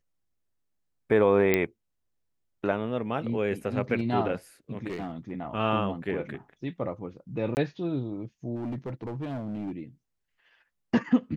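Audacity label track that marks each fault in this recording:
1.540000	1.540000	pop -9 dBFS
4.890000	5.310000	clipped -29.5 dBFS
7.550000	7.570000	gap 19 ms
8.560000	9.790000	clipped -30 dBFS

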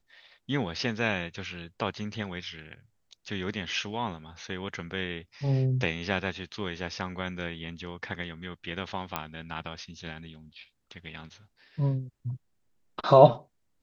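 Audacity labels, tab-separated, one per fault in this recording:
9.160000	9.160000	pop -14 dBFS

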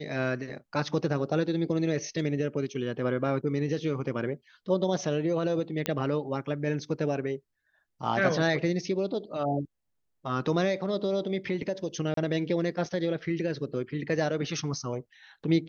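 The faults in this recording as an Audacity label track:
5.860000	5.860000	pop -12 dBFS
12.140000	12.170000	gap 33 ms

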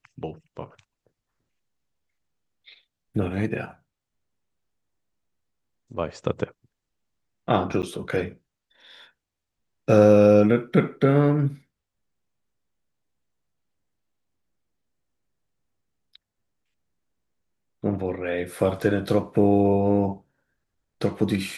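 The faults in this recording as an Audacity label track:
7.820000	7.830000	gap 8.9 ms

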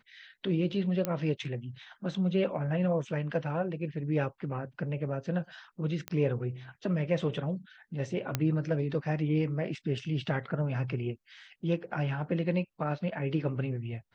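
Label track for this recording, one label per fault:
1.050000	1.050000	pop -15 dBFS
6.080000	6.080000	pop -19 dBFS
8.350000	8.350000	pop -13 dBFS

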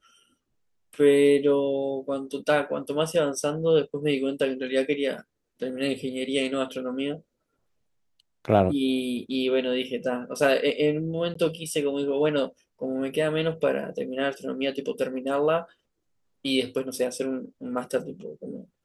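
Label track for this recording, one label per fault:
11.340000	11.350000	gap 14 ms

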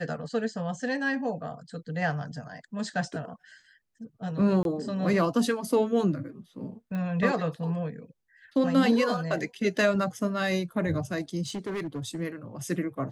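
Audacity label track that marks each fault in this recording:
4.630000	4.650000	gap 22 ms
6.950000	6.950000	pop -24 dBFS
11.460000	12.210000	clipped -29 dBFS

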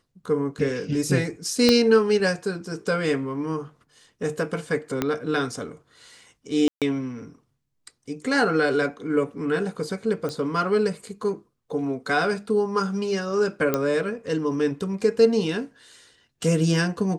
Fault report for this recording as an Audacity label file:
1.690000	1.690000	pop -4 dBFS
5.020000	5.020000	pop -9 dBFS
6.680000	6.820000	gap 0.137 s
10.290000	10.290000	pop -18 dBFS
13.740000	13.740000	pop -8 dBFS

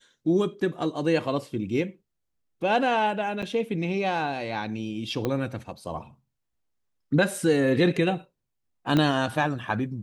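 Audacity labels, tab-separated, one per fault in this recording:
3.420000	3.430000	gap 6.1 ms
5.250000	5.250000	pop -14 dBFS
8.970000	8.970000	pop -11 dBFS

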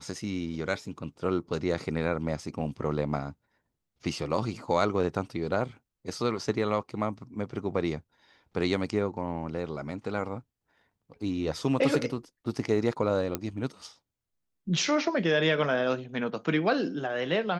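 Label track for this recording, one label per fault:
13.350000	13.350000	pop -13 dBFS

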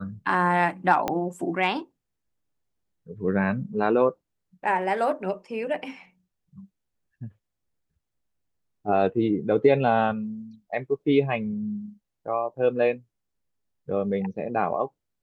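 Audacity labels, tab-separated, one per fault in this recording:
1.080000	1.080000	pop -12 dBFS

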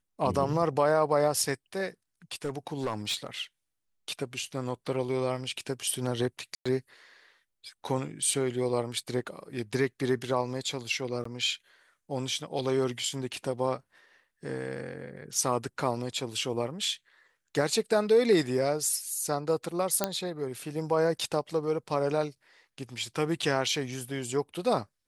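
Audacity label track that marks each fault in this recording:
2.450000	3.270000	clipped -25.5 dBFS
6.550000	6.660000	gap 0.105 s
11.240000	11.250000	gap 14 ms
20.040000	20.040000	pop -9 dBFS

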